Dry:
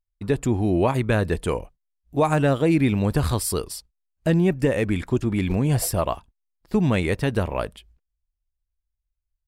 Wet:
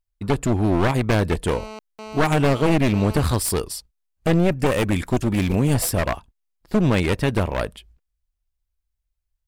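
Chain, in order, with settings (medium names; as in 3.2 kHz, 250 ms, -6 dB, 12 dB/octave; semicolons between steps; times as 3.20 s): one-sided wavefolder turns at -21.5 dBFS; 1.51–3.22 s: mobile phone buzz -39 dBFS; 4.66–5.74 s: treble shelf 7.6 kHz +10 dB; trim +3 dB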